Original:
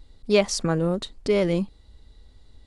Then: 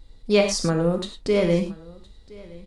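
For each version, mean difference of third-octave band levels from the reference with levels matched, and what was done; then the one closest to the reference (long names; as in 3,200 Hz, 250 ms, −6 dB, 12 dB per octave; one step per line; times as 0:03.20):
3.5 dB: single-tap delay 1,016 ms −22.5 dB
reverb whose tail is shaped and stops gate 130 ms flat, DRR 4 dB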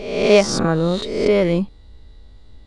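5.0 dB: peak hold with a rise ahead of every peak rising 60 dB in 0.90 s
low-pass filter 3,700 Hz 6 dB per octave
level +4.5 dB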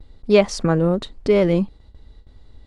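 2.0 dB: noise gate with hold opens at −41 dBFS
high-shelf EQ 4,100 Hz −12 dB
level +5.5 dB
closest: third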